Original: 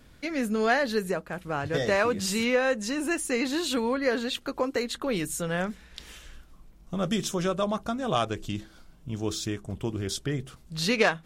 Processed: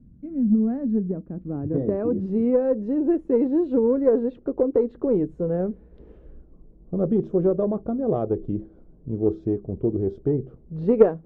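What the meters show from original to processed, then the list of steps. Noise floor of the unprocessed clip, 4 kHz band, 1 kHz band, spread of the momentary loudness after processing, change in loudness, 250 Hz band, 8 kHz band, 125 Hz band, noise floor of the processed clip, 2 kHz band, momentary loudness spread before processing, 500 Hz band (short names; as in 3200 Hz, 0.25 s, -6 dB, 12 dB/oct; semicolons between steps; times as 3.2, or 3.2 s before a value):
-54 dBFS, under -30 dB, -7.0 dB, 10 LU, +4.5 dB, +7.5 dB, under -40 dB, +4.5 dB, -51 dBFS, under -20 dB, 12 LU, +6.5 dB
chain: low-pass sweep 200 Hz -> 430 Hz, 0.22–2.93; added harmonics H 3 -22 dB, 4 -31 dB, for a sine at -6.5 dBFS; gain +5.5 dB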